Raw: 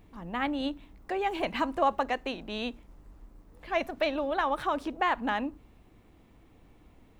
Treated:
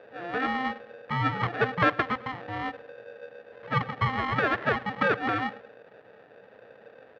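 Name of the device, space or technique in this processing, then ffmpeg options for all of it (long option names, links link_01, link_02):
ring modulator pedal into a guitar cabinet: -filter_complex "[0:a]lowpass=frequency=1200:width=0.5412,lowpass=frequency=1200:width=1.3066,asettb=1/sr,asplit=3[link_01][link_02][link_03];[link_01]atrim=end=1.554[link_04];[link_02]atrim=start=1.55:end=2.5,asetpts=PTS-STARTPTS,afade=type=in:duration=0.004:curve=qsin,afade=type=out:start_time=0.946:duration=0.004:curve=qsin,equalizer=frequency=190:width_type=o:width=1.5:gain=-3[link_05];[link_03]atrim=start=2.496[link_06];[link_04][link_05]acrossfade=duration=0.004:curve1=hsin:curve2=qsin[link_07];[link_07][link_06]acrossfade=duration=0.004:curve1=qsin:curve2=hsin,aecho=1:1:103|206|309:0.0891|0.0339|0.0129,aeval=exprs='val(0)*sgn(sin(2*PI*520*n/s))':channel_layout=same,highpass=100,equalizer=frequency=120:width_type=q:width=4:gain=10,equalizer=frequency=450:width_type=q:width=4:gain=9,equalizer=frequency=660:width_type=q:width=4:gain=6,equalizer=frequency=1300:width_type=q:width=4:gain=3,equalizer=frequency=1800:width_type=q:width=4:gain=9,lowpass=frequency=3500:width=0.5412,lowpass=frequency=3500:width=1.3066"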